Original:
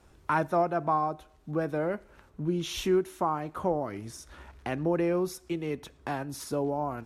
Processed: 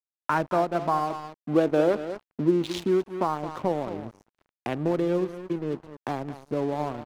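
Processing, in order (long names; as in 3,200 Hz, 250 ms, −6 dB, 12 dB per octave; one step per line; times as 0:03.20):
adaptive Wiener filter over 25 samples
high-pass filter 120 Hz 12 dB per octave
single-tap delay 217 ms −12.5 dB
gain on a spectral selection 0:01.38–0:02.78, 230–11,000 Hz +8 dB
in parallel at +1.5 dB: downward compressor 6 to 1, threshold −32 dBFS, peak gain reduction 14 dB
on the sum: dead-zone distortion −40.5 dBFS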